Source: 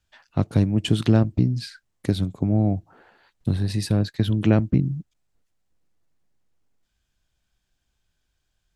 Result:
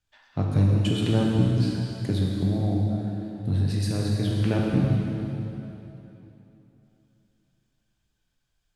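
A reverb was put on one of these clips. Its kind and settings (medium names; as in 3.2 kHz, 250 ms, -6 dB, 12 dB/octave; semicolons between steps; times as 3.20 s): plate-style reverb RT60 3.2 s, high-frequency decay 0.9×, DRR -3.5 dB; trim -6.5 dB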